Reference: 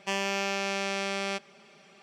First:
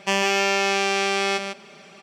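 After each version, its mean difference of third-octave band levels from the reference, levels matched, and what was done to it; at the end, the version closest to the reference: 2.0 dB: on a send: echo 0.15 s -7 dB; on the sum: gain +8.5 dB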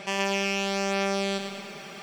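5.5 dB: in parallel at 0 dB: negative-ratio compressor -44 dBFS, ratio -1; on the sum: lo-fi delay 0.112 s, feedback 55%, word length 9-bit, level -6 dB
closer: first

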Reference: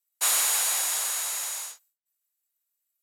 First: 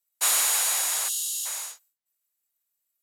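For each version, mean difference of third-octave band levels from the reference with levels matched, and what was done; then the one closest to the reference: 1.5 dB: spectral gain 1.08–1.46, 390–2700 Hz -25 dB; gain +1 dB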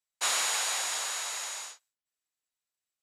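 5.0 dB: LPF 6000 Hz 12 dB/oct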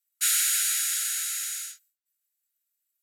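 7.5 dB: brick-wall FIR high-pass 1300 Hz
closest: first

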